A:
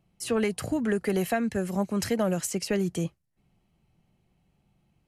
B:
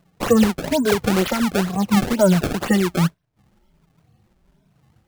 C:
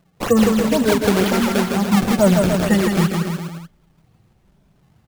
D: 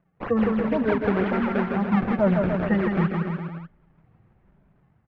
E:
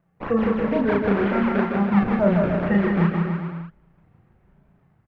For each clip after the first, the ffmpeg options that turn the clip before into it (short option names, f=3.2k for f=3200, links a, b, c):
-af "afftfilt=real='re*pow(10,24/40*sin(2*PI*(1.6*log(max(b,1)*sr/1024/100)/log(2)-(1.3)*(pts-256)/sr)))':imag='im*pow(10,24/40*sin(2*PI*(1.6*log(max(b,1)*sr/1024/100)/log(2)-(1.3)*(pts-256)/sr)))':win_size=1024:overlap=0.75,equalizer=f=2.4k:w=5.5:g=-13.5,acrusher=samples=26:mix=1:aa=0.000001:lfo=1:lforange=41.6:lforate=2.1,volume=4.5dB"
-af "aecho=1:1:160|296|411.6|509.9|593.4:0.631|0.398|0.251|0.158|0.1"
-af "lowpass=f=2k:w=0.5412,lowpass=f=2k:w=1.3066,aemphasis=mode=production:type=75fm,dynaudnorm=f=170:g=5:m=6.5dB,volume=-8dB"
-filter_complex "[0:a]asplit=2[a][b];[b]adelay=35,volume=-2.5dB[c];[a][c]amix=inputs=2:normalize=0"